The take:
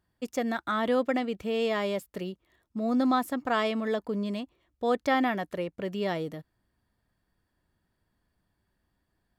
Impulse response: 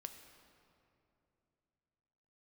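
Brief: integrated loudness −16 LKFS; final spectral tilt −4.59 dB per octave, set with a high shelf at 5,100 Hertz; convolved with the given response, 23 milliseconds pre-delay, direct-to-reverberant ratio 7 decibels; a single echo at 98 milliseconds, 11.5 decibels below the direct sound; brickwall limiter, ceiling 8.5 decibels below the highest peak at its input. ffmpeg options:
-filter_complex "[0:a]highshelf=frequency=5100:gain=-7.5,alimiter=limit=-22.5dB:level=0:latency=1,aecho=1:1:98:0.266,asplit=2[link_01][link_02];[1:a]atrim=start_sample=2205,adelay=23[link_03];[link_02][link_03]afir=irnorm=-1:irlink=0,volume=-2.5dB[link_04];[link_01][link_04]amix=inputs=2:normalize=0,volume=15dB"

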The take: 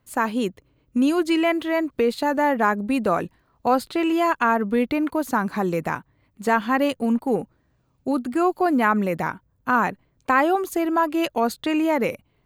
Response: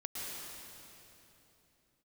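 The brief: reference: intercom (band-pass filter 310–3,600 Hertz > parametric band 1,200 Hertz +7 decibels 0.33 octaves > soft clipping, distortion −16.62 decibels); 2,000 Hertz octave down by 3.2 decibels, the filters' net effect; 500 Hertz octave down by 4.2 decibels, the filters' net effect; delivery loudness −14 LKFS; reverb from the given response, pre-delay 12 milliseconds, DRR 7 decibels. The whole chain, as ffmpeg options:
-filter_complex "[0:a]equalizer=frequency=500:width_type=o:gain=-4.5,equalizer=frequency=2000:width_type=o:gain=-5,asplit=2[link_01][link_02];[1:a]atrim=start_sample=2205,adelay=12[link_03];[link_02][link_03]afir=irnorm=-1:irlink=0,volume=-8.5dB[link_04];[link_01][link_04]amix=inputs=2:normalize=0,highpass=310,lowpass=3600,equalizer=frequency=1200:width_type=o:width=0.33:gain=7,asoftclip=threshold=-13dB,volume=11.5dB"

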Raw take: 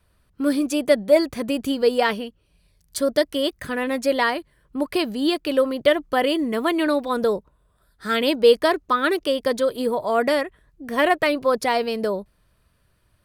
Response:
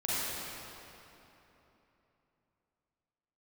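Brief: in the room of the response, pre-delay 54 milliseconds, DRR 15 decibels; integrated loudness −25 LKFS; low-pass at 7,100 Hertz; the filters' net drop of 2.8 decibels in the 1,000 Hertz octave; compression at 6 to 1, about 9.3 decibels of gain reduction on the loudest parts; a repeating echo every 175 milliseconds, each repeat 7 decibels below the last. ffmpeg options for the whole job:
-filter_complex "[0:a]lowpass=7100,equalizer=frequency=1000:width_type=o:gain=-4,acompressor=threshold=-21dB:ratio=6,aecho=1:1:175|350|525|700|875:0.447|0.201|0.0905|0.0407|0.0183,asplit=2[link_01][link_02];[1:a]atrim=start_sample=2205,adelay=54[link_03];[link_02][link_03]afir=irnorm=-1:irlink=0,volume=-23.5dB[link_04];[link_01][link_04]amix=inputs=2:normalize=0,volume=1dB"

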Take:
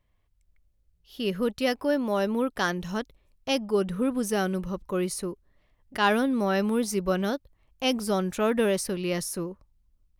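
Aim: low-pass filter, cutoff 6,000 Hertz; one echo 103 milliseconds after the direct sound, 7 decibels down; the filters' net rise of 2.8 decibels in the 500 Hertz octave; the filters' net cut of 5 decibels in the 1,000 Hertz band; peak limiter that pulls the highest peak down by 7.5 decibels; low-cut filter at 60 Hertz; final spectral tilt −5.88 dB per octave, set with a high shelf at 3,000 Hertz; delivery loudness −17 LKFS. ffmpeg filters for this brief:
ffmpeg -i in.wav -af "highpass=60,lowpass=6000,equalizer=frequency=500:width_type=o:gain=5.5,equalizer=frequency=1000:width_type=o:gain=-8,highshelf=frequency=3000:gain=-8.5,alimiter=limit=-19dB:level=0:latency=1,aecho=1:1:103:0.447,volume=11.5dB" out.wav

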